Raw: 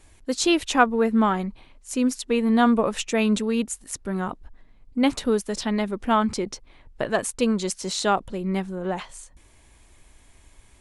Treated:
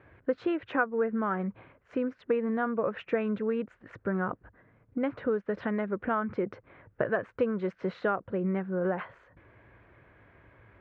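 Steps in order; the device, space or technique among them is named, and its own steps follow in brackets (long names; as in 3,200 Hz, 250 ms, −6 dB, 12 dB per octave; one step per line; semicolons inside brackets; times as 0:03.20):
bass amplifier (downward compressor 5 to 1, threshold −29 dBFS, peak gain reduction 16.5 dB; loudspeaker in its box 70–2,000 Hz, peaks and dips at 73 Hz −10 dB, 110 Hz +5 dB, 240 Hz −5 dB, 510 Hz +5 dB, 850 Hz −5 dB, 1,500 Hz +6 dB)
level +3 dB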